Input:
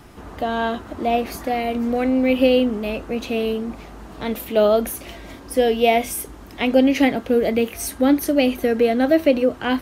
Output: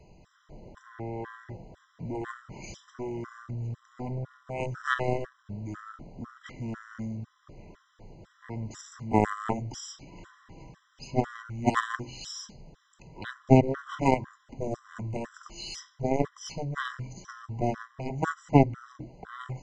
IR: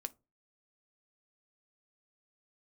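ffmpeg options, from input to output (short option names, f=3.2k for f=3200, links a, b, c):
-af "aeval=exprs='0.562*(cos(1*acos(clip(val(0)/0.562,-1,1)))-cos(1*PI/2))+0.0562*(cos(2*acos(clip(val(0)/0.562,-1,1)))-cos(2*PI/2))+0.251*(cos(3*acos(clip(val(0)/0.562,-1,1)))-cos(3*PI/2))+0.0224*(cos(4*acos(clip(val(0)/0.562,-1,1)))-cos(4*PI/2))':c=same,asetrate=22050,aresample=44100,afftfilt=real='re*gt(sin(2*PI*2*pts/sr)*(1-2*mod(floor(b*sr/1024/1000),2)),0)':imag='im*gt(sin(2*PI*2*pts/sr)*(1-2*mod(floor(b*sr/1024/1000),2)),0)':win_size=1024:overlap=0.75"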